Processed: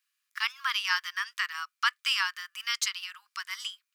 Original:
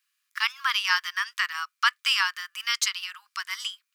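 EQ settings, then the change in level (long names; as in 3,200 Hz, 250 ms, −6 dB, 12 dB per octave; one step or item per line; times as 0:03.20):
high-pass filter 700 Hz 12 dB per octave
−4.0 dB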